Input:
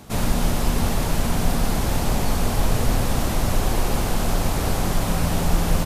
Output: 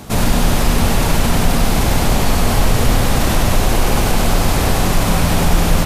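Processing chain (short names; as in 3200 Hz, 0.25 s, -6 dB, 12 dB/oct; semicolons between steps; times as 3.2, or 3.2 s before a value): in parallel at +2.5 dB: limiter -17 dBFS, peak gain reduction 10.5 dB; on the sum: narrowing echo 99 ms, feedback 73%, band-pass 2500 Hz, level -3.5 dB; gain +2 dB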